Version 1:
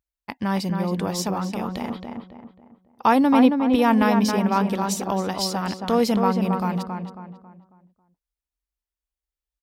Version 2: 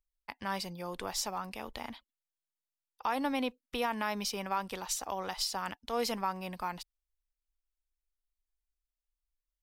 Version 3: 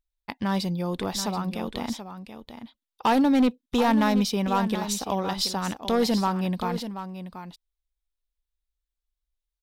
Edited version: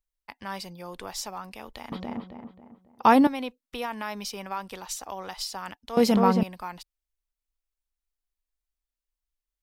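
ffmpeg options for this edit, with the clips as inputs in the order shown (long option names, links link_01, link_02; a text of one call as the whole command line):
ffmpeg -i take0.wav -i take1.wav -filter_complex "[0:a]asplit=2[link_01][link_02];[1:a]asplit=3[link_03][link_04][link_05];[link_03]atrim=end=1.922[link_06];[link_01]atrim=start=1.918:end=3.272[link_07];[link_04]atrim=start=3.268:end=5.972[link_08];[link_02]atrim=start=5.968:end=6.432[link_09];[link_05]atrim=start=6.428[link_10];[link_06][link_07]acrossfade=duration=0.004:curve1=hsin:curve2=hsin[link_11];[link_11][link_08]acrossfade=duration=0.004:curve1=hsin:curve2=hsin[link_12];[link_12][link_09]acrossfade=duration=0.004:curve1=hsin:curve2=hsin[link_13];[link_13][link_10]acrossfade=duration=0.004:curve1=hsin:curve2=hsin" out.wav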